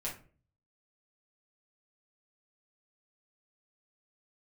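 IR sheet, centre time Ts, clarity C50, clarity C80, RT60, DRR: 24 ms, 8.0 dB, 14.5 dB, 0.40 s, -5.5 dB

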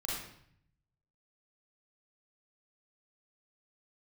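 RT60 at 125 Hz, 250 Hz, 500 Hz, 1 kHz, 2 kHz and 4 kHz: 1.2 s, 0.90 s, 0.65 s, 0.65 s, 0.65 s, 0.60 s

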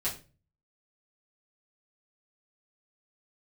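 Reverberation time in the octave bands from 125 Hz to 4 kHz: 0.65 s, 0.45 s, 0.40 s, 0.30 s, 0.30 s, 0.30 s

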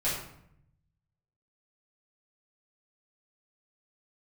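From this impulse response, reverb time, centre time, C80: 0.70 s, 48 ms, 6.5 dB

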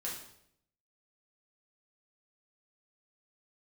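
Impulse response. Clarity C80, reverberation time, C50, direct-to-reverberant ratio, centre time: 8.0 dB, 0.70 s, 4.5 dB, -5.5 dB, 39 ms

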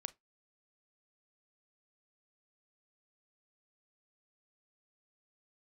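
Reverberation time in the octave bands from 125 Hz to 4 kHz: 0.20 s, 0.20 s, 0.15 s, 0.20 s, 0.15 s, 0.15 s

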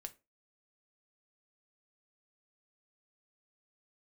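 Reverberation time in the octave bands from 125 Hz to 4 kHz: 0.25 s, 0.30 s, 0.30 s, 0.25 s, 0.25 s, 0.20 s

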